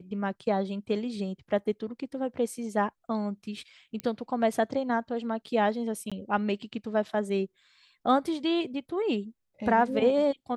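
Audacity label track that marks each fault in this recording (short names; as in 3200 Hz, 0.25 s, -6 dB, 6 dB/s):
4.000000	4.000000	pop -19 dBFS
6.100000	6.120000	gap 16 ms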